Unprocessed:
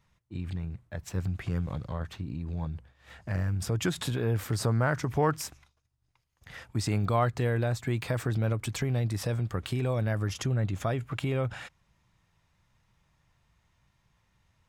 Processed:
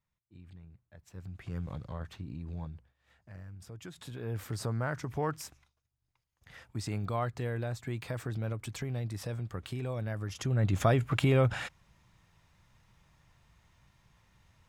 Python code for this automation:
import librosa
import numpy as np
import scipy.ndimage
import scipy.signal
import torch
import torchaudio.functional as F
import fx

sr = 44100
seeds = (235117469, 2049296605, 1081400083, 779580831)

y = fx.gain(x, sr, db=fx.line((1.06, -17.0), (1.64, -5.5), (2.58, -5.5), (3.17, -17.5), (3.89, -17.5), (4.38, -7.0), (10.3, -7.0), (10.77, 4.5)))